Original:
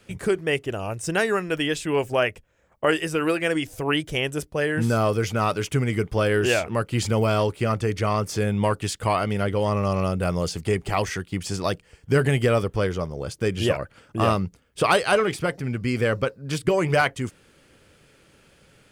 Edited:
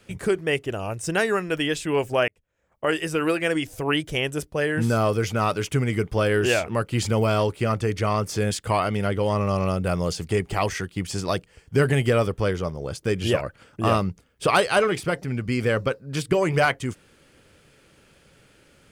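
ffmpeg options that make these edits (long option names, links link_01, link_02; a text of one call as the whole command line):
ffmpeg -i in.wav -filter_complex "[0:a]asplit=3[link_01][link_02][link_03];[link_01]atrim=end=2.28,asetpts=PTS-STARTPTS,afade=type=out:start_time=2.276:duration=0.004:curve=hsin[link_04];[link_02]atrim=start=2.28:end=8.512,asetpts=PTS-STARTPTS,afade=type=in:duration=0.82[link_05];[link_03]atrim=start=8.868[link_06];[link_04][link_05]concat=n=2:v=0:a=1[link_07];[link_07][link_06]acrossfade=duration=0.004:curve1=hsin:curve2=hsin" out.wav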